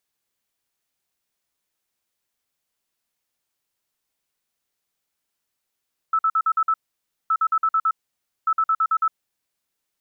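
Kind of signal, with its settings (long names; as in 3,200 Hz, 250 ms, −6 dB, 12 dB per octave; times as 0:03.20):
beeps in groups sine 1,310 Hz, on 0.06 s, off 0.05 s, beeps 6, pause 0.56 s, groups 3, −16 dBFS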